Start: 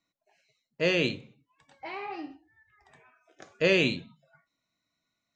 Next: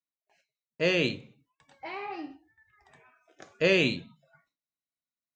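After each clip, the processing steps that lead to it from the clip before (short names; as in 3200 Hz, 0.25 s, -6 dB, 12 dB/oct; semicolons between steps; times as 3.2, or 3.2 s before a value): gate with hold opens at -58 dBFS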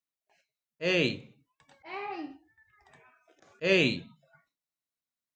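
auto swell 0.119 s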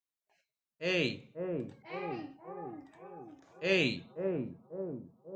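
analogue delay 0.542 s, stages 4096, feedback 54%, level -3.5 dB; gain -4.5 dB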